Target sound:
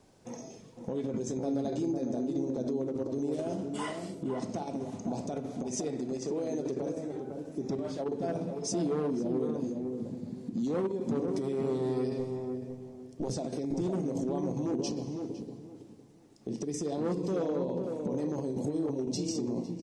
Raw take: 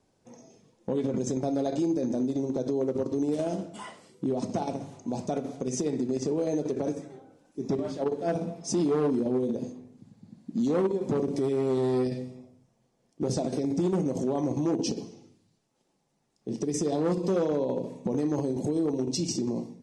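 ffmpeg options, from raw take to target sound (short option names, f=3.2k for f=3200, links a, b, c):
-filter_complex "[0:a]asettb=1/sr,asplit=3[a][b][c];[a]atrim=end=5.674[d];[b]atrim=start=5.67:end=6.67,asetpts=PTS-STARTPTS,afade=t=in:d=0.004:c=qsin,afade=t=out:st=0.996:d=0.004:c=qsin,lowshelf=f=260:g=-7.5[e];[c]atrim=start=6.666[f];[d][e]acrossfade=d=0.004:c1=hsin:c2=qsin[g];[g][f]acrossfade=d=0.004:c1=qsin:c2=hsin,asplit=2[h][i];[i]acompressor=threshold=-40dB:ratio=6,volume=0.5dB[j];[h][j]amix=inputs=2:normalize=0,alimiter=level_in=3dB:limit=-24dB:level=0:latency=1:release=493,volume=-3dB,asettb=1/sr,asplit=3[k][l][m];[k]atrim=end=1.124[n];[l]atrim=start=1.12:end=1.54,asetpts=PTS-STARTPTS,afade=t=in:d=0.004:c=qsin,afade=t=out:st=0.416:d=0.004:c=qsin,asplit=2[o][p];[p]adelay=18,volume=-8dB[q];[o][q]amix=inputs=2:normalize=0,atrim=end_sample=18522[r];[m]atrim=start=1.536[s];[n][r]acrossfade=d=0.004:c1=hsin:c2=qsin[t];[t][s]acrossfade=d=0.004:c1=qsin:c2=hsin,asettb=1/sr,asplit=3[u][v][w];[u]atrim=end=12.194[x];[v]atrim=start=12.19:end=13.31,asetpts=PTS-STARTPTS,afade=t=in:d=0.004:c=qsin,afade=t=out:st=1.116:d=0.004:c=qsin,aeval=exprs='0.0447*(cos(1*acos(clip(val(0)/0.0447,-1,1)))-cos(1*PI/2))+0.0112*(cos(2*acos(clip(val(0)/0.0447,-1,1)))-cos(2*PI/2))':c=same[y];[w]atrim=start=13.306[z];[x][y]acrossfade=d=0.004:c1=hsin:c2=qsin[aa];[aa][z]acrossfade=d=0.004:c1=qsin:c2=hsin,asplit=2[ab][ac];[ac]adelay=506,lowpass=f=840:p=1,volume=-4dB,asplit=2[ad][ae];[ae]adelay=506,lowpass=f=840:p=1,volume=0.26,asplit=2[af][ag];[ag]adelay=506,lowpass=f=840:p=1,volume=0.26,asplit=2[ah][ai];[ai]adelay=506,lowpass=f=840:p=1,volume=0.26[aj];[ab][ad][af][ah][aj]amix=inputs=5:normalize=0,volume=1.5dB"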